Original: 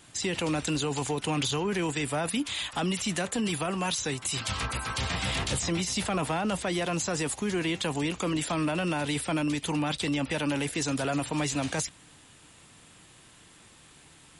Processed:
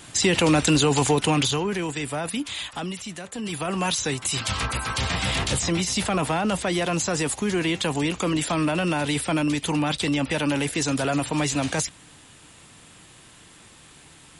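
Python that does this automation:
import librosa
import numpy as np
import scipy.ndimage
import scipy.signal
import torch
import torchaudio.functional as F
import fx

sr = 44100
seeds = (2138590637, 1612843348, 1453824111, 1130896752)

y = fx.gain(x, sr, db=fx.line((1.15, 10.0), (1.84, 1.0), (2.62, 1.0), (3.21, -7.0), (3.77, 5.0)))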